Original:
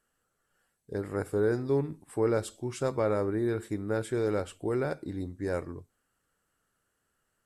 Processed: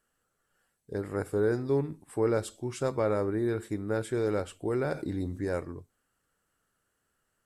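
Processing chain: 4.82–5.45 s: level flattener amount 50%

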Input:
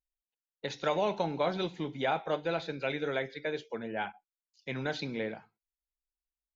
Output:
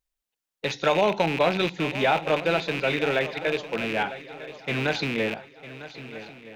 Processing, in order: rattle on loud lows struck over -46 dBFS, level -27 dBFS; shuffle delay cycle 1270 ms, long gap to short 3:1, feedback 36%, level -15 dB; trim +8 dB

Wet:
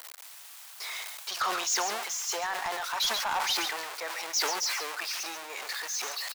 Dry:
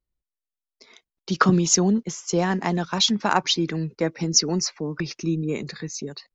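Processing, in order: jump at every zero crossing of -26.5 dBFS; high-pass 730 Hz 24 dB/octave; saturation -19.5 dBFS, distortion -7 dB; delay 138 ms -13.5 dB; decay stretcher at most 33 dB/s; trim -4.5 dB

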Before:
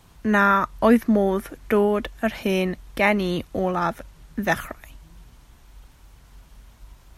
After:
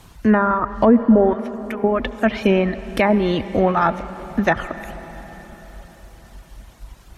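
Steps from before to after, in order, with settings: low-pass that closes with the level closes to 850 Hz, closed at -14 dBFS; reverb removal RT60 0.73 s; 1.33–1.84 s: amplifier tone stack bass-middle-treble 5-5-5; reverberation RT60 4.7 s, pre-delay 62 ms, DRR 13.5 dB; loudness maximiser +11 dB; trim -3.5 dB

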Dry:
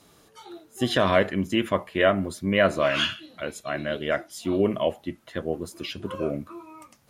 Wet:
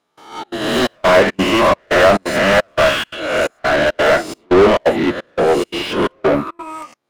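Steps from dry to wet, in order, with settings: reverse spectral sustain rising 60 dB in 0.88 s; overdrive pedal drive 39 dB, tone 1.6 kHz, clips at -2.5 dBFS; trance gate "..xxx.xxxx" 173 bpm -24 dB; upward expansion 2.5:1, over -21 dBFS; trim +1.5 dB

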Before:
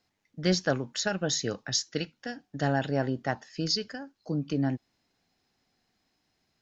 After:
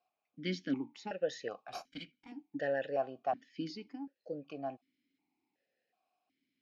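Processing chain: 1.68–2.32 s: comb filter that takes the minimum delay 1.3 ms; stepped vowel filter 2.7 Hz; trim +4 dB

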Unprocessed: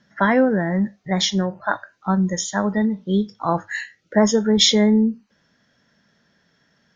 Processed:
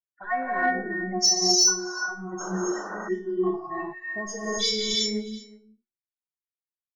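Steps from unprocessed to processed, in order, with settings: expander on every frequency bin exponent 2; in parallel at +3 dB: peak limiter -15 dBFS, peak gain reduction 10 dB; 1.16–1.64 s: on the sum: FFT filter 190 Hz 0 dB, 3.4 kHz -25 dB, 4.8 kHz +14 dB; level-controlled noise filter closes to 1.2 kHz, open at -9 dBFS; on a send: delay 367 ms -20.5 dB; on the sum: phase shifter stages 12, 2.7 Hz, lowest notch 200–3700 Hz; inharmonic resonator 360 Hz, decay 0.49 s, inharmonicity 0.002; gated-style reverb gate 390 ms rising, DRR -5 dB; saturation -15.5 dBFS, distortion -28 dB; 2.40–3.09 s: painted sound noise 290–1600 Hz -45 dBFS; 3.62–4.87 s: peaking EQ 4.4 kHz +8 dB 0.35 oct; trim +8 dB

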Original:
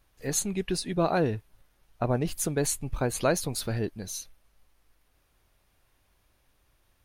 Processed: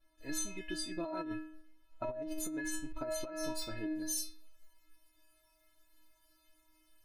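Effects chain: treble shelf 3.8 kHz -8 dB, from 3.95 s +4 dB; inharmonic resonator 310 Hz, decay 0.65 s, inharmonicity 0.008; compressor with a negative ratio -50 dBFS, ratio -1; trim +12.5 dB

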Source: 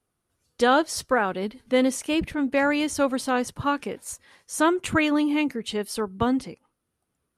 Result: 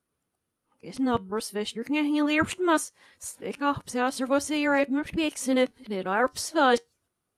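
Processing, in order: reverse the whole clip; bass shelf 92 Hz -6.5 dB; feedback comb 94 Hz, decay 0.17 s, harmonics all, mix 30%

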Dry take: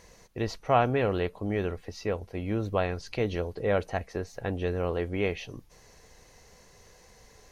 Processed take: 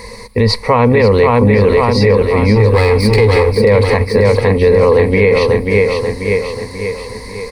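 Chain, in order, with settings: 2.55–3.56 s: comb filter that takes the minimum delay 2.4 ms; rippled EQ curve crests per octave 0.93, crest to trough 16 dB; feedback delay 537 ms, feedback 51%, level -6 dB; loudness maximiser +21 dB; trim -1 dB

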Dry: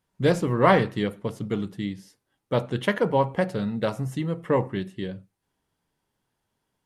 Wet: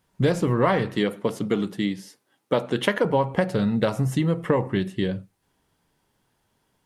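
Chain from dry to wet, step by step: 0.95–3.05 s: high-pass 200 Hz 12 dB/octave; compression 5:1, threshold -26 dBFS, peak gain reduction 12.5 dB; trim +8 dB

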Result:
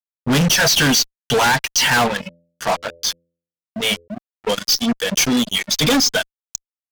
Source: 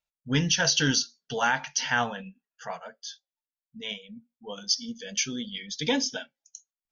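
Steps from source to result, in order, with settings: reverb removal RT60 0.76 s; fuzz box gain 38 dB, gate -43 dBFS; 2.16–4.08 s: de-hum 84.86 Hz, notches 7

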